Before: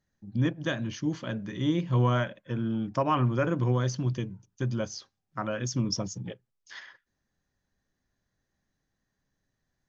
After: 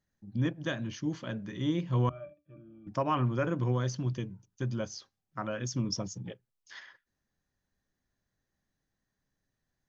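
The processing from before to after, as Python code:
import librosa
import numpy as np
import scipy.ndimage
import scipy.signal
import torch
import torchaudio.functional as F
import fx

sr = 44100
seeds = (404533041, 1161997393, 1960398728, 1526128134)

y = fx.octave_resonator(x, sr, note='D', decay_s=0.18, at=(2.09, 2.87))
y = F.gain(torch.from_numpy(y), -3.5).numpy()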